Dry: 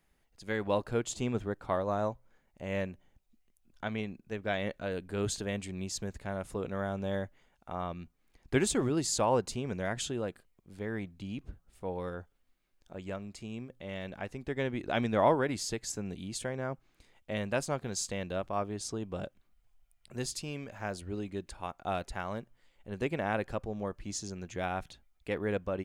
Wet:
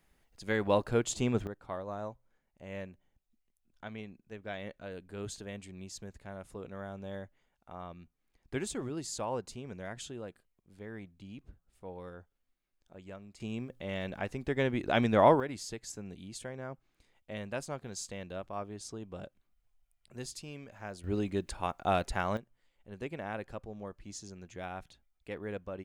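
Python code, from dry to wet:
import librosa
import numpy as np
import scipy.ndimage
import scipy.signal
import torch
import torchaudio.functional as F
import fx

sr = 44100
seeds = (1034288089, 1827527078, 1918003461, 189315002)

y = fx.gain(x, sr, db=fx.steps((0.0, 2.5), (1.47, -8.0), (13.4, 3.0), (15.4, -6.0), (21.04, 5.0), (22.37, -7.0)))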